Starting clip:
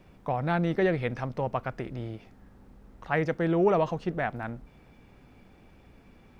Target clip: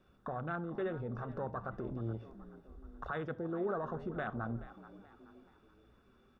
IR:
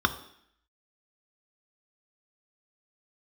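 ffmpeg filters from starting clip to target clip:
-filter_complex "[0:a]acrossover=split=2600[a][b];[b]acompressor=threshold=-53dB:ratio=4:attack=1:release=60[c];[a][c]amix=inputs=2:normalize=0,afwtdn=0.0224,equalizer=f=110:w=2.1:g=6.5,acompressor=threshold=-34dB:ratio=6,alimiter=level_in=10.5dB:limit=-24dB:level=0:latency=1:release=16,volume=-10.5dB,asplit=5[d][e][f][g][h];[e]adelay=428,afreqshift=68,volume=-16dB[i];[f]adelay=856,afreqshift=136,volume=-23.7dB[j];[g]adelay=1284,afreqshift=204,volume=-31.5dB[k];[h]adelay=1712,afreqshift=272,volume=-39.2dB[l];[d][i][j][k][l]amix=inputs=5:normalize=0,asplit=2[m][n];[1:a]atrim=start_sample=2205,atrim=end_sample=3969,lowshelf=f=430:g=-8.5[o];[n][o]afir=irnorm=-1:irlink=0,volume=-10.5dB[p];[m][p]amix=inputs=2:normalize=0,volume=2dB"

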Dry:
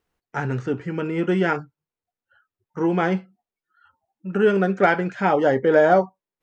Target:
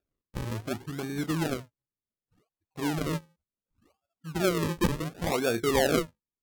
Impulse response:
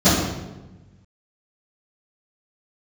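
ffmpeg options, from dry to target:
-af "bandreject=f=700:w=18,acrusher=samples=37:mix=1:aa=0.000001:lfo=1:lforange=37:lforate=0.68,asetrate=38170,aresample=44100,atempo=1.15535,volume=-8.5dB"

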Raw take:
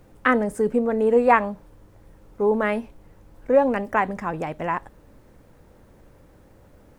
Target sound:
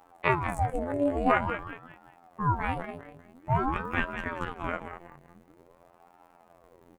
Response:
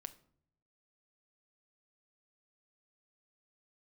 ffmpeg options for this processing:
-af "bandreject=f=5.3k:w=8.9,aecho=1:1:192|384|576|768:0.355|0.117|0.0386|0.0128,afftfilt=real='hypot(re,im)*cos(PI*b)':imag='0':win_size=2048:overlap=0.75,aeval=exprs='val(0)*sin(2*PI*480*n/s+480*0.7/0.48*sin(2*PI*0.48*n/s))':c=same,volume=-1dB"

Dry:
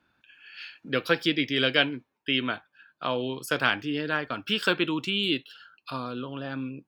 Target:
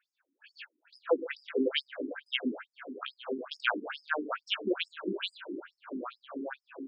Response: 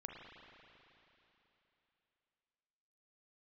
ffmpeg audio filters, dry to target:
-filter_complex "[0:a]asplit=2[a][b];[b]adelay=219,lowpass=f=2.6k:p=1,volume=-17.5dB,asplit=2[c][d];[d]adelay=219,lowpass=f=2.6k:p=1,volume=0.48,asplit=2[e][f];[f]adelay=219,lowpass=f=2.6k:p=1,volume=0.48,asplit=2[g][h];[h]adelay=219,lowpass=f=2.6k:p=1,volume=0.48[i];[a][c][e][g][i]amix=inputs=5:normalize=0,asplit=2[j][k];[1:a]atrim=start_sample=2205,asetrate=23814,aresample=44100,lowpass=2.4k[l];[k][l]afir=irnorm=-1:irlink=0,volume=-3dB[m];[j][m]amix=inputs=2:normalize=0,afftfilt=real='re*between(b*sr/1024,280*pow(7000/280,0.5+0.5*sin(2*PI*2.3*pts/sr))/1.41,280*pow(7000/280,0.5+0.5*sin(2*PI*2.3*pts/sr))*1.41)':imag='im*between(b*sr/1024,280*pow(7000/280,0.5+0.5*sin(2*PI*2.3*pts/sr))/1.41,280*pow(7000/280,0.5+0.5*sin(2*PI*2.3*pts/sr))*1.41)':win_size=1024:overlap=0.75,volume=-1.5dB"

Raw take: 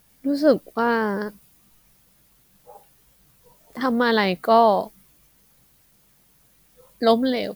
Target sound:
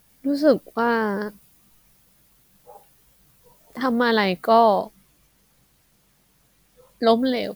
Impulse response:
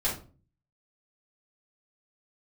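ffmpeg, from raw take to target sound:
-filter_complex "[0:a]asettb=1/sr,asplit=3[a][b][c];[a]atrim=end=4.794[d];[b]atrim=start=4.79:end=7.19,asetpts=PTS-STARTPTS,afade=t=in:d=0.004:c=qsin,afade=t=out:st=2.396:d=0.004:c=qsin,highshelf=f=11k:g=-7.5[e];[c]atrim=start=7.186[f];[d][e]acrossfade=d=0.004:c1=hsin:c2=qsin[g];[g][f]acrossfade=d=0.004:c1=qsin:c2=hsin"

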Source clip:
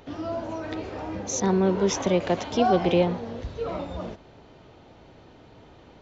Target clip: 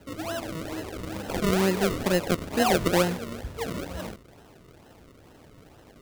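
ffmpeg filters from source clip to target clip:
-af "acrusher=samples=37:mix=1:aa=0.000001:lfo=1:lforange=37:lforate=2.2,volume=-1.5dB"

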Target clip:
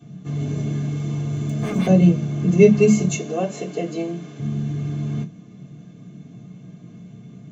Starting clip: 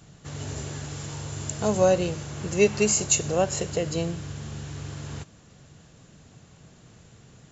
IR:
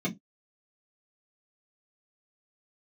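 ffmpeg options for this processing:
-filter_complex "[0:a]asettb=1/sr,asplit=3[a][b][c];[a]atrim=end=0.904[d];[b]atrim=start=0.9:end=1.87,asetpts=PTS-STARTPTS,afade=t=in:d=0.004:c=qsin,afade=t=out:st=0.966:d=0.004:c=qsin,aeval=exprs='0.0531*(abs(mod(val(0)/0.0531+3,4)-2)-1)':c=same[e];[c]atrim=start=1.866[f];[d][e]acrossfade=d=0.004:c1=hsin:c2=qsin[g];[g][f]acrossfade=d=0.004:c1=qsin:c2=hsin,asettb=1/sr,asplit=3[h][i][j];[h]atrim=end=3.154[k];[i]atrim=start=3.15:end=4.39,asetpts=PTS-STARTPTS,afade=t=in:d=0.004:c=qsin,afade=t=out:st=1.236:d=0.004:c=qsin,highpass=380[l];[j]atrim=start=4.386[m];[k][l]acrossfade=d=0.004:c1=hsin:c2=qsin[n];[n][m]acrossfade=d=0.004:c1=qsin:c2=hsin[o];[1:a]atrim=start_sample=2205,asetrate=43218,aresample=44100[p];[o][p]afir=irnorm=-1:irlink=0,volume=-6dB"

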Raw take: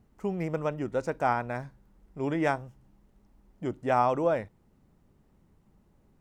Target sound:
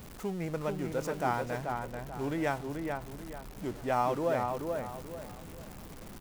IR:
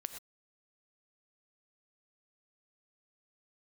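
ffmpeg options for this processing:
-filter_complex "[0:a]aeval=exprs='val(0)+0.5*0.0141*sgn(val(0))':c=same,highshelf=f=4.6k:g=5.5,asplit=2[a][b];[b]adelay=436,lowpass=f=2.3k:p=1,volume=-4dB,asplit=2[c][d];[d]adelay=436,lowpass=f=2.3k:p=1,volume=0.35,asplit=2[e][f];[f]adelay=436,lowpass=f=2.3k:p=1,volume=0.35,asplit=2[g][h];[h]adelay=436,lowpass=f=2.3k:p=1,volume=0.35[i];[a][c][e][g][i]amix=inputs=5:normalize=0,volume=-5.5dB"

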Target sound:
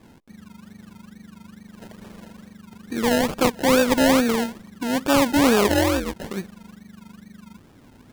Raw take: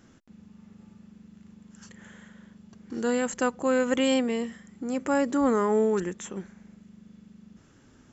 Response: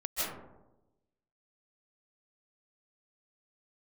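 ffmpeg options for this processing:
-filter_complex "[0:a]asplit=3[a][b][c];[a]afade=t=out:st=5.67:d=0.02[d];[b]aeval=exprs='val(0)*sin(2*PI*130*n/s)':c=same,afade=t=in:st=5.67:d=0.02,afade=t=out:st=6.15:d=0.02[e];[c]afade=t=in:st=6.15:d=0.02[f];[d][e][f]amix=inputs=3:normalize=0,acrusher=samples=30:mix=1:aa=0.000001:lfo=1:lforange=18:lforate=2.3,volume=6.5dB"

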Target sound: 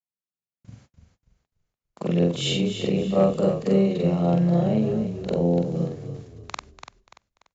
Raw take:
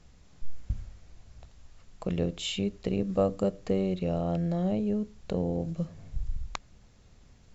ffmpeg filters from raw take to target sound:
-filter_complex "[0:a]afftfilt=real='re':imag='-im':win_size=4096:overlap=0.75,highpass=f=130:w=0.5412,highpass=f=130:w=1.3066,agate=range=-42dB:threshold=-56dB:ratio=16:detection=peak,adynamicequalizer=threshold=0.00447:dfrequency=250:dqfactor=3.8:tfrequency=250:tqfactor=3.8:attack=5:release=100:ratio=0.375:range=2:mode=cutabove:tftype=bell,dynaudnorm=f=170:g=11:m=11dB,asoftclip=type=hard:threshold=-10dB,asplit=5[a][b][c][d][e];[b]adelay=291,afreqshift=-33,volume=-9dB[f];[c]adelay=582,afreqshift=-66,volume=-17.9dB[g];[d]adelay=873,afreqshift=-99,volume=-26.7dB[h];[e]adelay=1164,afreqshift=-132,volume=-35.6dB[i];[a][f][g][h][i]amix=inputs=5:normalize=0,aresample=16000,aresample=44100"

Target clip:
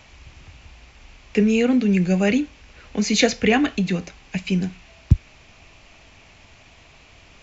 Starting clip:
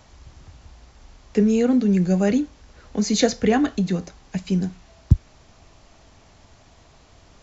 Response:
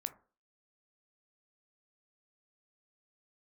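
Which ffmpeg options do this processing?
-af "equalizer=f=2.5k:t=o:w=0.76:g=13.5"

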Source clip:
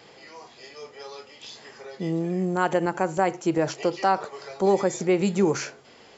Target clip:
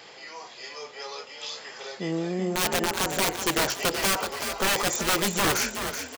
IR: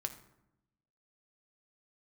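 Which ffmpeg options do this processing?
-filter_complex "[0:a]lowshelf=f=470:g=-12,aeval=exprs='(mod(15.8*val(0)+1,2)-1)/15.8':c=same,asplit=6[a][b][c][d][e][f];[b]adelay=377,afreqshift=38,volume=-8dB[g];[c]adelay=754,afreqshift=76,volume=-14.6dB[h];[d]adelay=1131,afreqshift=114,volume=-21.1dB[i];[e]adelay=1508,afreqshift=152,volume=-27.7dB[j];[f]adelay=1885,afreqshift=190,volume=-34.2dB[k];[a][g][h][i][j][k]amix=inputs=6:normalize=0,volume=6dB"

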